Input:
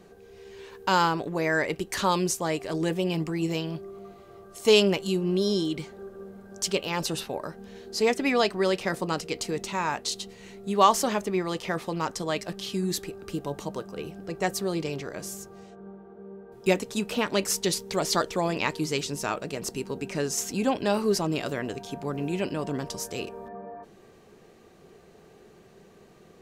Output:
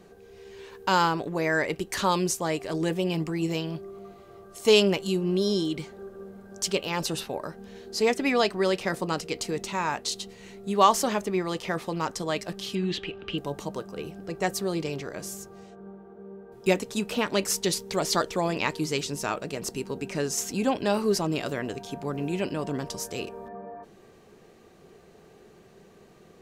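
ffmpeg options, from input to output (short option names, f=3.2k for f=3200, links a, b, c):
-filter_complex "[0:a]asettb=1/sr,asplit=3[a][b][c];[a]atrim=end=12.754[d];[b]atrim=start=12.75:end=13.38,asetpts=PTS-STARTPTS,afade=t=in:d=0.004:c=qsin,afade=t=out:st=0.626:d=0.004:c=qsin,lowpass=f=3k:t=q:w=6.2[e];[c]atrim=start=13.376[f];[d][e]acrossfade=d=0.004:c1=hsin:c2=qsin[g];[g][f]acrossfade=d=0.004:c1=qsin:c2=hsin"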